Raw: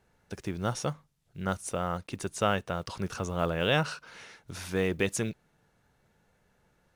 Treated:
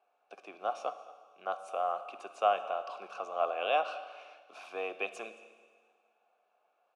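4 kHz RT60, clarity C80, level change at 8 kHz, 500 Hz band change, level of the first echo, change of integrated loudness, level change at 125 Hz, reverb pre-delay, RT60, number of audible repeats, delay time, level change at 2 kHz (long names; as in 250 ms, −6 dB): 1.7 s, 12.5 dB, below −15 dB, −3.0 dB, −20.5 dB, −3.5 dB, below −35 dB, 9 ms, 1.7 s, 1, 222 ms, −6.5 dB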